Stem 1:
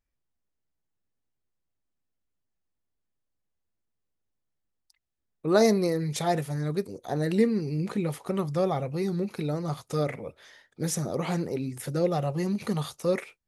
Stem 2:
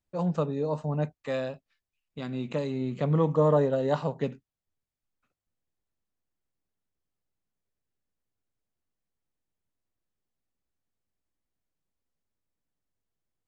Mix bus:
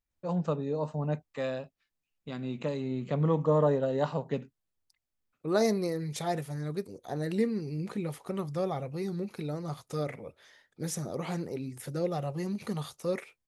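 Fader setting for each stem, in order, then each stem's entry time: −5.5, −2.5 decibels; 0.00, 0.10 seconds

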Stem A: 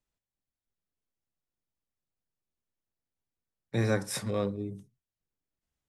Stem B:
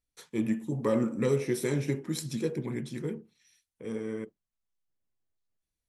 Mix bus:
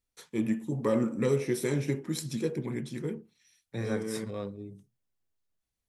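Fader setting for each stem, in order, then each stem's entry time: −6.5, 0.0 decibels; 0.00, 0.00 seconds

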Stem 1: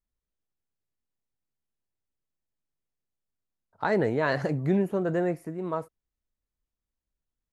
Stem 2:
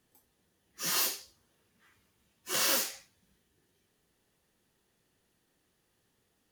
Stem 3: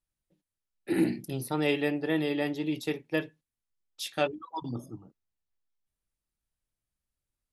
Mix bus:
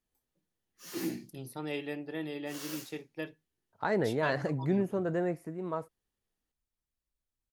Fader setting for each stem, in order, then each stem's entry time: −4.5, −15.5, −9.5 decibels; 0.00, 0.00, 0.05 seconds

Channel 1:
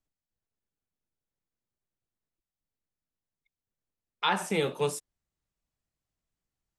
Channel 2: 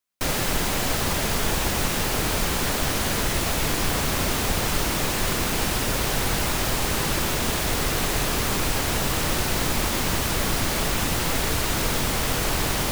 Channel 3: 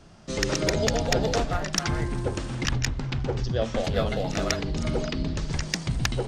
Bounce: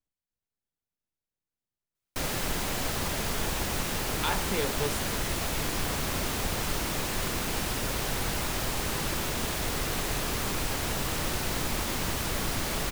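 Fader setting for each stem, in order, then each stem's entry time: −4.0 dB, −6.5 dB, muted; 0.00 s, 1.95 s, muted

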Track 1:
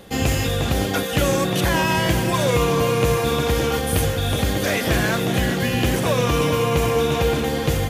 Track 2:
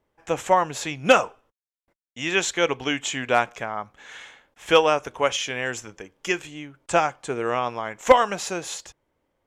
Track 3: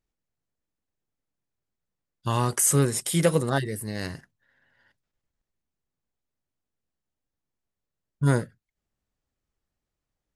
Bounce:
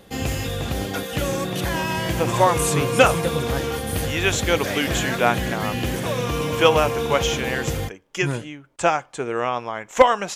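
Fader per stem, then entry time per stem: −5.0, +1.0, −4.5 decibels; 0.00, 1.90, 0.00 seconds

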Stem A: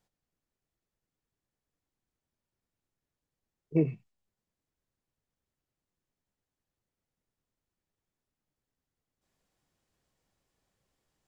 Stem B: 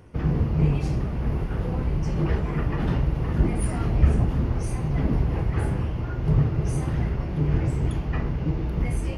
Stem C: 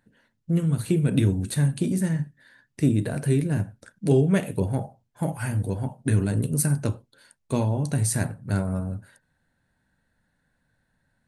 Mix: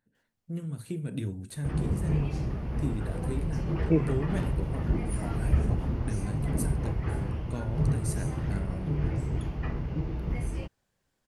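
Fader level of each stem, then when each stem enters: +1.5, −6.0, −12.5 decibels; 0.15, 1.50, 0.00 seconds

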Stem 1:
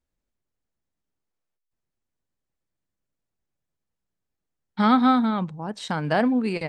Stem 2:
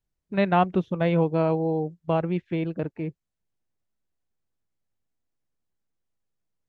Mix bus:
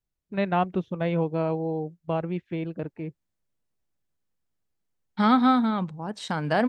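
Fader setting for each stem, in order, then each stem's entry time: −1.5, −3.5 decibels; 0.40, 0.00 seconds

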